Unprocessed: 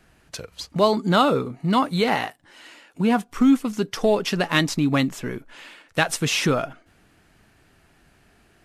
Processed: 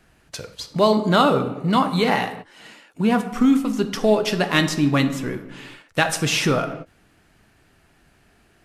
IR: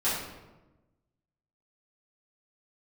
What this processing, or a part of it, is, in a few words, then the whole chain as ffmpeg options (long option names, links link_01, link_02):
keyed gated reverb: -filter_complex "[0:a]asplit=3[link_01][link_02][link_03];[1:a]atrim=start_sample=2205[link_04];[link_02][link_04]afir=irnorm=-1:irlink=0[link_05];[link_03]apad=whole_len=381051[link_06];[link_05][link_06]sidechaingate=range=-33dB:threshold=-45dB:ratio=16:detection=peak,volume=-16.5dB[link_07];[link_01][link_07]amix=inputs=2:normalize=0"